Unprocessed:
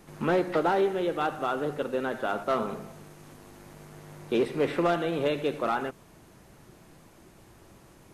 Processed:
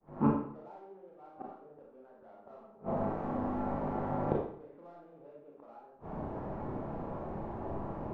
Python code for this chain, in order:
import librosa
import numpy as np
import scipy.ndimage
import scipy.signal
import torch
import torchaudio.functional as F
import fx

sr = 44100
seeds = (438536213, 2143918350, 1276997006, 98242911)

p1 = fx.fade_in_head(x, sr, length_s=0.58)
p2 = fx.lowpass_res(p1, sr, hz=840.0, q=1.6)
p3 = fx.hum_notches(p2, sr, base_hz=60, count=7)
p4 = 10.0 ** (-29.0 / 20.0) * np.tanh(p3 / 10.0 ** (-29.0 / 20.0))
p5 = p3 + F.gain(torch.from_numpy(p4), -5.5).numpy()
p6 = fx.gate_flip(p5, sr, shuts_db=-24.0, range_db=-40)
p7 = fx.rev_schroeder(p6, sr, rt60_s=0.6, comb_ms=28, drr_db=-2.5)
y = F.gain(torch.from_numpy(p7), 6.5).numpy()